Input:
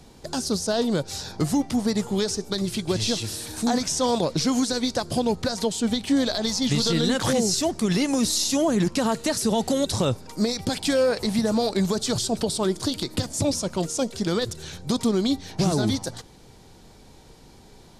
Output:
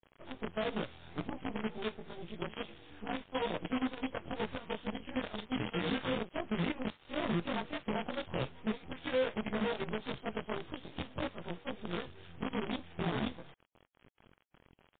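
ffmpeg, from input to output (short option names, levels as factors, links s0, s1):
-af "afftfilt=real='re':imag='-im':win_size=2048:overlap=0.75,atempo=1.2,aresample=8000,acrusher=bits=5:dc=4:mix=0:aa=0.000001,aresample=44100,volume=0.376" -ar 8000 -c:a libmp3lame -b:a 24k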